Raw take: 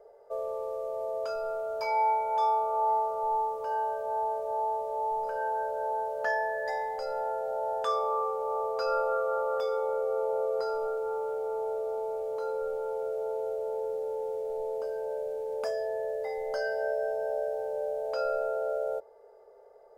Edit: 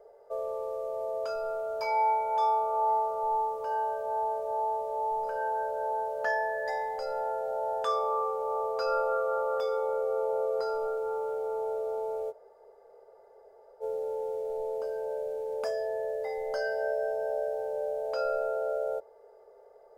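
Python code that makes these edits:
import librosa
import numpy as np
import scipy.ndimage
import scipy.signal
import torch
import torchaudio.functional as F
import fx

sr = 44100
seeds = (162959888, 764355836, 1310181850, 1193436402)

y = fx.edit(x, sr, fx.room_tone_fill(start_s=12.31, length_s=1.51, crossfade_s=0.04), tone=tone)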